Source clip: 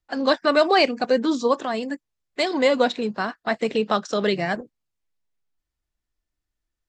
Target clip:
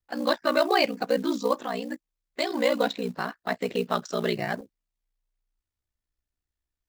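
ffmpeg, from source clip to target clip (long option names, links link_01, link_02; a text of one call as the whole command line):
ffmpeg -i in.wav -af "acrusher=bits=6:mode=log:mix=0:aa=0.000001,aeval=exprs='val(0)*sin(2*PI*30*n/s)':channel_layout=same,volume=-2dB" out.wav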